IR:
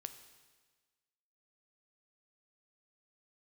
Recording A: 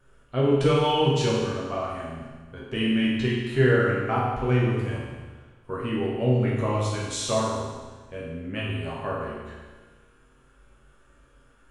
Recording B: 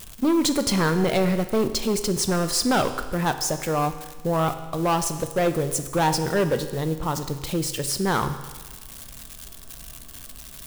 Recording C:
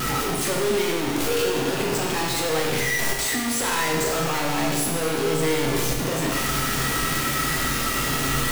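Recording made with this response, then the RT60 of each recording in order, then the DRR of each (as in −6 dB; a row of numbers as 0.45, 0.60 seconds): B; 1.4, 1.4, 1.4 seconds; −6.0, 9.0, −1.0 decibels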